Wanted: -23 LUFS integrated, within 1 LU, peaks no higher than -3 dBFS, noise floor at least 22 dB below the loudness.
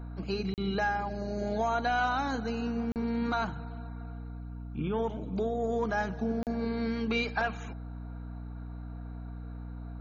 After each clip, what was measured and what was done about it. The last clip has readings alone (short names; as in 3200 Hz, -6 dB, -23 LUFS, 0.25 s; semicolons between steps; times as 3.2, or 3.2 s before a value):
dropouts 3; longest dropout 38 ms; hum 60 Hz; harmonics up to 300 Hz; hum level -38 dBFS; loudness -33.0 LUFS; peak -18.0 dBFS; loudness target -23.0 LUFS
-> interpolate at 0.54/2.92/6.43, 38 ms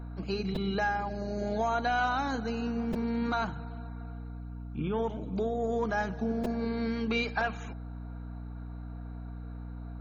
dropouts 0; hum 60 Hz; harmonics up to 300 Hz; hum level -38 dBFS
-> notches 60/120/180/240/300 Hz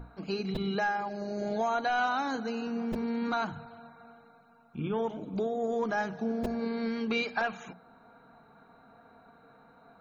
hum none; loudness -32.0 LUFS; peak -17.5 dBFS; loudness target -23.0 LUFS
-> gain +9 dB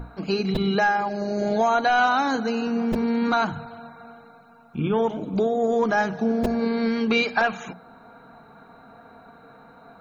loudness -23.0 LUFS; peak -8.5 dBFS; noise floor -50 dBFS